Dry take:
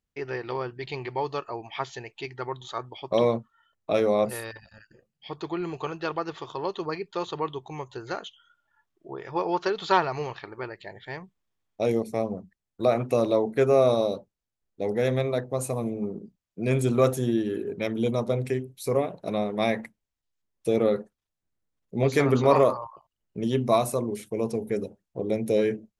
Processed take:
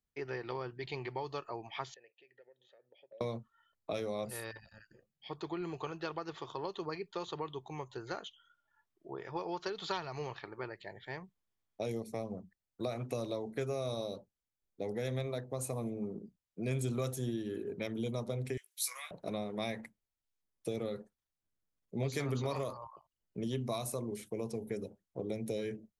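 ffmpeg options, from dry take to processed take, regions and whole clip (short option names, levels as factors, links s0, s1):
-filter_complex "[0:a]asettb=1/sr,asplit=3[s0][s1][s2];[s0]atrim=end=1.944[s3];[s1]atrim=start=1.94:end=3.21,asetpts=PTS-STARTPTS,afade=t=in:d=0.004:c=qsin,afade=t=out:st=1.266:d=0.004:c=qsin,acompressor=threshold=0.0112:ratio=12:attack=3.2:release=140:knee=1:detection=peak,asplit=3[s4][s5][s6];[s4]bandpass=f=530:t=q:w=8,volume=1[s7];[s5]bandpass=f=1840:t=q:w=8,volume=0.501[s8];[s6]bandpass=f=2480:t=q:w=8,volume=0.355[s9];[s7][s8][s9]amix=inputs=3:normalize=0[s10];[s2]atrim=start=3.206[s11];[s3][s10]acrossfade=d=0.004:c1=hsin:c2=qsin[s12];[s12][s11]acrossfade=d=0.004:c1=qsin:c2=hsin,asettb=1/sr,asplit=3[s13][s14][s15];[s13]atrim=end=18.574[s16];[s14]atrim=start=18.57:end=19.11,asetpts=PTS-STARTPTS,afade=t=in:d=0.004:c=qsin,afade=t=out:st=0.536:d=0.004:c=qsin,highpass=f=1400:w=0.5412,highpass=f=1400:w=1.3066,highshelf=f=2600:g=11.5,asplit=2[s17][s18];[s18]adelay=18,volume=0.501[s19];[s17][s19]amix=inputs=2:normalize=0,atrim=end_sample=23814[s20];[s15]atrim=start=19.106[s21];[s16][s20]acrossfade=d=0.004:c1=hsin:c2=qsin[s22];[s22][s21]acrossfade=d=0.004:c1=qsin:c2=hsin,bandreject=f=2700:w=29,acrossover=split=130|3000[s23][s24][s25];[s24]acompressor=threshold=0.0355:ratio=6[s26];[s23][s26][s25]amix=inputs=3:normalize=0,volume=0.501"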